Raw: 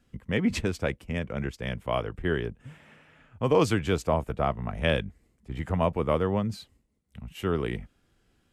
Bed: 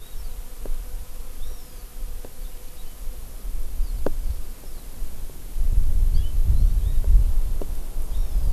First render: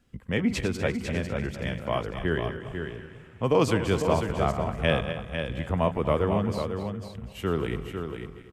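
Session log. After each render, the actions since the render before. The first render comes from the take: regenerating reverse delay 0.122 s, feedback 60%, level -10 dB; echo 0.499 s -7 dB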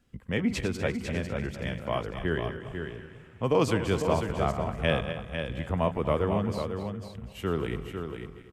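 gain -2 dB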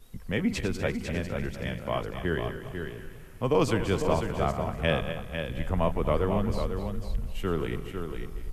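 add bed -15 dB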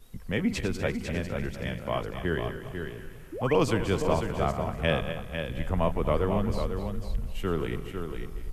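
3.32–3.56 painted sound rise 280–3200 Hz -36 dBFS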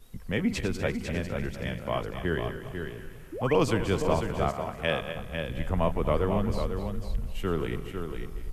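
4.49–5.16 low shelf 240 Hz -9 dB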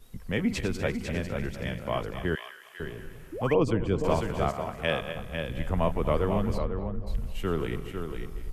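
2.35–2.8 HPF 1400 Hz; 3.54–4.04 formant sharpening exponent 1.5; 6.57–7.06 LPF 2600 Hz -> 1100 Hz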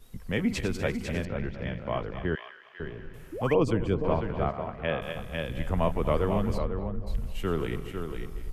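1.25–3.14 air absorption 240 m; 3.94–5.02 air absorption 360 m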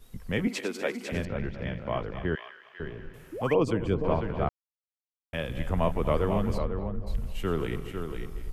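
0.47–1.12 HPF 250 Hz 24 dB/oct; 3.11–3.83 low shelf 81 Hz -9 dB; 4.49–5.33 mute

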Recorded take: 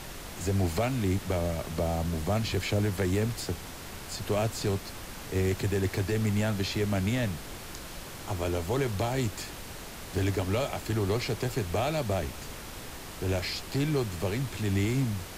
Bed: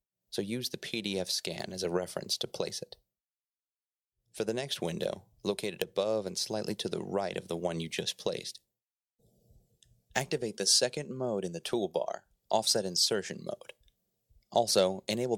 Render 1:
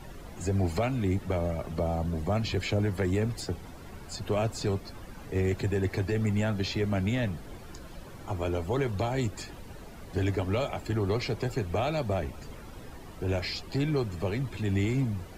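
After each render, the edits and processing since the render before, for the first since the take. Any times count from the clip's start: denoiser 13 dB, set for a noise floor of -42 dBFS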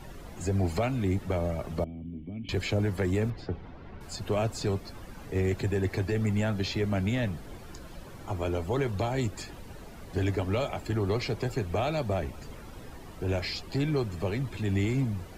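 1.84–2.49 vocal tract filter i; 3.3–4.01 air absorption 280 m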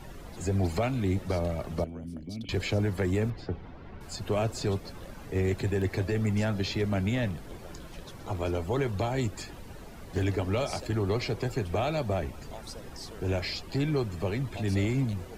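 add bed -17.5 dB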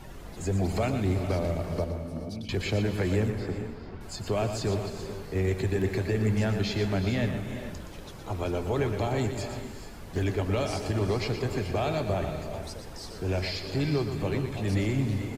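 on a send: echo 0.119 s -8.5 dB; on the sum: non-linear reverb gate 0.47 s rising, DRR 8 dB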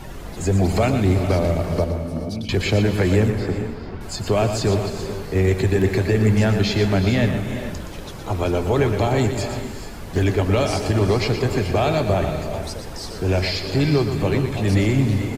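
gain +9 dB

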